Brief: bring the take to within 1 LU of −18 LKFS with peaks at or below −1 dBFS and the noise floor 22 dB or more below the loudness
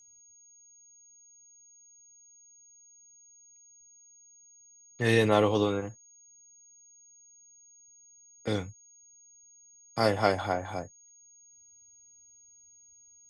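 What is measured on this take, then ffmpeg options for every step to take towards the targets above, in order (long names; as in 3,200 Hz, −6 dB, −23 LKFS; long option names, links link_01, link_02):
interfering tone 6,600 Hz; level of the tone −55 dBFS; integrated loudness −28.0 LKFS; sample peak −9.5 dBFS; target loudness −18.0 LKFS
→ -af "bandreject=frequency=6600:width=30"
-af "volume=10dB,alimiter=limit=-1dB:level=0:latency=1"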